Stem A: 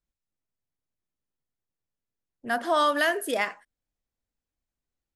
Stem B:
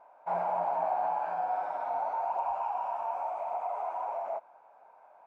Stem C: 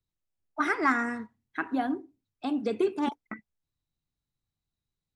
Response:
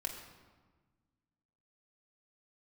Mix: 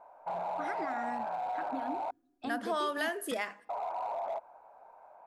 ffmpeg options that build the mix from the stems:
-filter_complex "[0:a]bandreject=f=50:t=h:w=6,bandreject=f=100:t=h:w=6,bandreject=f=150:t=h:w=6,bandreject=f=200:t=h:w=6,volume=-5dB,asplit=2[a][b];[b]volume=-22.5dB[c];[1:a]highshelf=f=2.1k:g=-9.5,alimiter=level_in=6.5dB:limit=-24dB:level=0:latency=1:release=19,volume=-6.5dB,asoftclip=type=hard:threshold=-32.5dB,volume=3dB,asplit=3[d][e][f];[d]atrim=end=2.11,asetpts=PTS-STARTPTS,afade=t=out:st=2.106:d=0.004:c=hsin[g];[e]atrim=start=2.11:end=3.69,asetpts=PTS-STARTPTS,volume=0[h];[f]atrim=start=3.69,asetpts=PTS-STARTPTS,afade=t=in:d=0.004:c=hsin[i];[g][h][i]concat=n=3:v=0:a=1[j];[2:a]alimiter=limit=-23.5dB:level=0:latency=1:release=182,volume=-5.5dB,asplit=2[k][l];[l]volume=-23dB[m];[3:a]atrim=start_sample=2205[n];[c][m]amix=inputs=2:normalize=0[o];[o][n]afir=irnorm=-1:irlink=0[p];[a][j][k][p]amix=inputs=4:normalize=0,acompressor=threshold=-33dB:ratio=2"

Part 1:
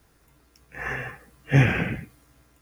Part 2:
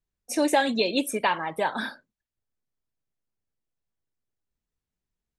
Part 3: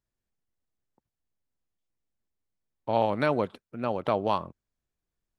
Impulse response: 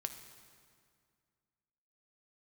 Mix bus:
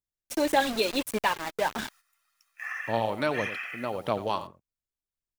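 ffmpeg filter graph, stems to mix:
-filter_complex "[0:a]highpass=f=1.1k:w=0.5412,highpass=f=1.1k:w=1.3066,aecho=1:1:1.6:0.7,acompressor=threshold=-34dB:ratio=4,adelay=1850,volume=0dB[a];[1:a]aeval=exprs='val(0)*gte(abs(val(0)),0.0398)':c=same,volume=-2.5dB[b];[2:a]highshelf=f=3.3k:g=9.5,volume=-4dB,asplit=2[c][d];[d]volume=-13dB,aecho=0:1:89:1[e];[a][b][c][e]amix=inputs=4:normalize=0,agate=range=-10dB:threshold=-51dB:ratio=16:detection=peak,aphaser=in_gain=1:out_gain=1:delay=3.6:decay=0.32:speed=1.7:type=triangular"

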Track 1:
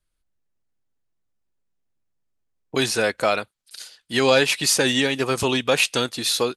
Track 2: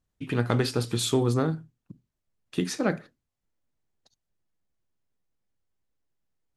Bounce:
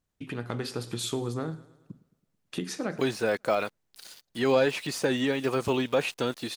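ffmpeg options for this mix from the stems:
-filter_complex "[0:a]deesser=0.95,aeval=exprs='val(0)*gte(abs(val(0)),0.00596)':c=same,adelay=250,volume=-5.5dB[a];[1:a]acompressor=threshold=-40dB:ratio=2,volume=1dB,asplit=2[b][c];[c]volume=-19.5dB,aecho=0:1:109|218|327|436|545|654|763|872:1|0.53|0.281|0.149|0.0789|0.0418|0.0222|0.0117[d];[a][b][d]amix=inputs=3:normalize=0,lowshelf=f=100:g=-6,dynaudnorm=f=350:g=3:m=3dB"

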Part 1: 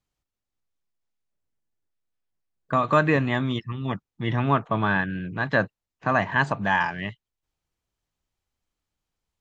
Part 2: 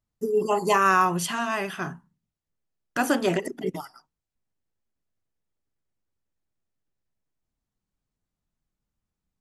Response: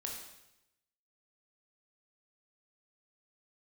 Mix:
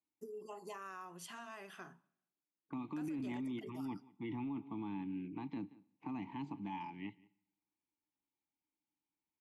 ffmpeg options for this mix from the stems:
-filter_complex "[0:a]acrossover=split=330|3000[a][b][c];[b]acompressor=threshold=-34dB:ratio=6[d];[a][d][c]amix=inputs=3:normalize=0,asplit=3[e][f][g];[e]bandpass=f=300:t=q:w=8,volume=0dB[h];[f]bandpass=f=870:t=q:w=8,volume=-6dB[i];[g]bandpass=f=2.24k:t=q:w=8,volume=-9dB[j];[h][i][j]amix=inputs=3:normalize=0,volume=1dB,asplit=3[k][l][m];[l]volume=-19.5dB[n];[m]volume=-23dB[o];[1:a]highpass=210,acompressor=threshold=-31dB:ratio=5,volume=-16dB,asplit=2[p][q];[q]volume=-20dB[r];[2:a]atrim=start_sample=2205[s];[n][r]amix=inputs=2:normalize=0[t];[t][s]afir=irnorm=-1:irlink=0[u];[o]aecho=0:1:178:1[v];[k][p][u][v]amix=inputs=4:normalize=0,alimiter=level_in=11dB:limit=-24dB:level=0:latency=1:release=11,volume=-11dB"

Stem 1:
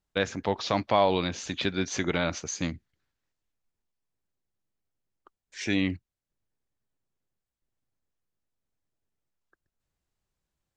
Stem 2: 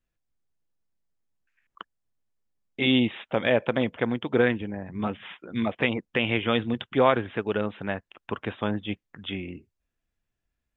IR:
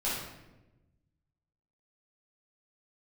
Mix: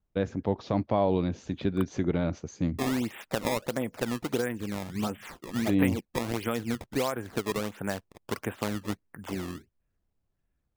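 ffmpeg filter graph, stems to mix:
-filter_complex "[0:a]tiltshelf=f=840:g=10,volume=-5.5dB[a];[1:a]lowpass=2.4k,acompressor=threshold=-26dB:ratio=6,acrusher=samples=17:mix=1:aa=0.000001:lfo=1:lforange=27.2:lforate=1.5,volume=0.5dB[b];[a][b]amix=inputs=2:normalize=0"

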